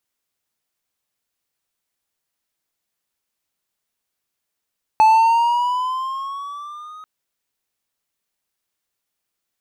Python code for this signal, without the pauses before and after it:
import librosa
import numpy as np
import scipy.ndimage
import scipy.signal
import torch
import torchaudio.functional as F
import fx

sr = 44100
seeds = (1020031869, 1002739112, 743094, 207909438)

y = fx.riser_tone(sr, length_s=2.04, level_db=-6.0, wave='triangle', hz=867.0, rise_st=6.5, swell_db=-27.5)